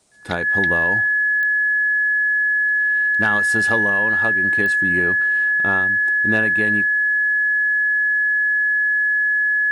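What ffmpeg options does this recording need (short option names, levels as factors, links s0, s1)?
-af "adeclick=t=4,bandreject=f=1700:w=30,agate=range=0.0891:threshold=0.316"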